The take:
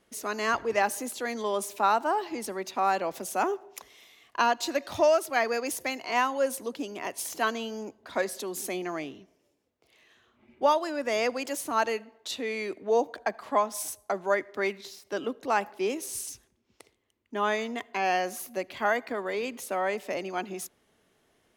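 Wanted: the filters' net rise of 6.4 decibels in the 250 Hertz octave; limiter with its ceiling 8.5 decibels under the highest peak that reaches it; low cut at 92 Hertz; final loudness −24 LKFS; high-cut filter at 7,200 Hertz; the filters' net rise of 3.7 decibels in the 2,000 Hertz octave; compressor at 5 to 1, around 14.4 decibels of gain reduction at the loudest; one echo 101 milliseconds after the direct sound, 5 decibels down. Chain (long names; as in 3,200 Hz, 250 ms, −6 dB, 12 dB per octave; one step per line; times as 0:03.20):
high-pass filter 92 Hz
low-pass filter 7,200 Hz
parametric band 250 Hz +8 dB
parametric band 2,000 Hz +4.5 dB
downward compressor 5 to 1, threshold −33 dBFS
brickwall limiter −26.5 dBFS
single-tap delay 101 ms −5 dB
level +12.5 dB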